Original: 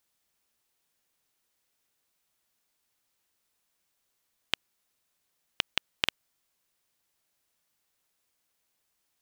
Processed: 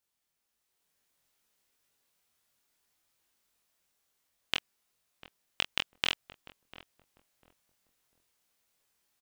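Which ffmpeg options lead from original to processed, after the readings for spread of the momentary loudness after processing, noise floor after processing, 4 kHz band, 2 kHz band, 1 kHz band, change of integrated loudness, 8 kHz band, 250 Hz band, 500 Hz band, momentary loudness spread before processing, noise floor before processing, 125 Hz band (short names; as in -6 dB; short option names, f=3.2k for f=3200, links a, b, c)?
4 LU, -83 dBFS, -0.5 dB, -0.5 dB, 0.0 dB, -0.5 dB, -0.5 dB, 0.0 dB, 0.0 dB, 4 LU, -78 dBFS, -0.5 dB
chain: -filter_complex "[0:a]flanger=delay=22.5:depth=3.7:speed=1.6,asplit=2[a][b];[b]adelay=21,volume=-8dB[c];[a][c]amix=inputs=2:normalize=0,asplit=2[d][e];[e]adelay=697,lowpass=f=800:p=1,volume=-13dB,asplit=2[f][g];[g]adelay=697,lowpass=f=800:p=1,volume=0.27,asplit=2[h][i];[i]adelay=697,lowpass=f=800:p=1,volume=0.27[j];[d][f][h][j]amix=inputs=4:normalize=0,dynaudnorm=f=140:g=11:m=7dB,volume=-3.5dB"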